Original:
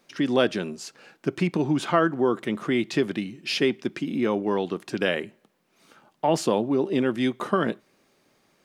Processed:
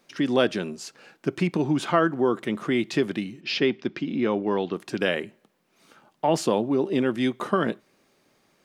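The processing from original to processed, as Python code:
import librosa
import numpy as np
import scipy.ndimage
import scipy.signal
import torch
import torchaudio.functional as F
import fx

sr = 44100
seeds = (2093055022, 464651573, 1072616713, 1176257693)

y = fx.lowpass(x, sr, hz=5300.0, slope=24, at=(3.4, 4.72), fade=0.02)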